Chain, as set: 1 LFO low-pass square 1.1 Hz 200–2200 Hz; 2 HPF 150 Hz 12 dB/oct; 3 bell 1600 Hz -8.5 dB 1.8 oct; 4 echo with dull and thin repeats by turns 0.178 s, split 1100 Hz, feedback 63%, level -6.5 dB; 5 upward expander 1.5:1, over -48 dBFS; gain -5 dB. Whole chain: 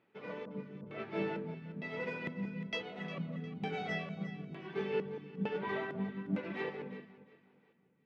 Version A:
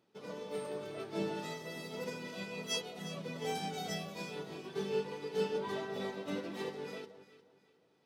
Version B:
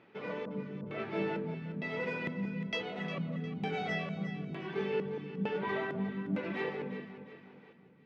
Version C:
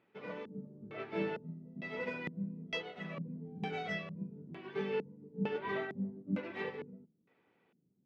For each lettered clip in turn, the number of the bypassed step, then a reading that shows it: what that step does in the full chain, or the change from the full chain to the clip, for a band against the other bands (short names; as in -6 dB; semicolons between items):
1, 4 kHz band +9.5 dB; 5, loudness change +3.0 LU; 4, momentary loudness spread change +2 LU